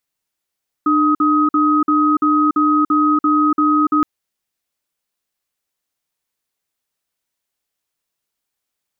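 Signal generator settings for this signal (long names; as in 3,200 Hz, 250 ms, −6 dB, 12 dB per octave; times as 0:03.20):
tone pair in a cadence 300 Hz, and 1,260 Hz, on 0.29 s, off 0.05 s, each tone −14 dBFS 3.17 s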